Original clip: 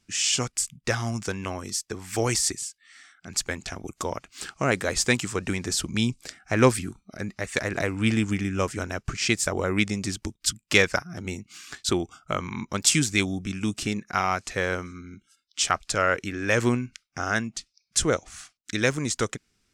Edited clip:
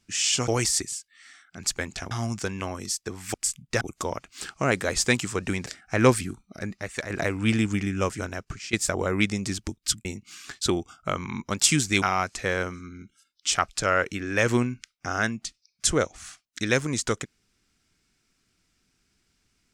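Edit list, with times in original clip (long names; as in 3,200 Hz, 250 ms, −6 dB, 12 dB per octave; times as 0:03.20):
0:00.48–0:00.95: swap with 0:02.18–0:03.81
0:05.66–0:06.24: remove
0:07.20–0:07.68: fade out, to −7.5 dB
0:08.54–0:09.31: fade out equal-power, to −16.5 dB
0:10.63–0:11.28: remove
0:13.25–0:14.14: remove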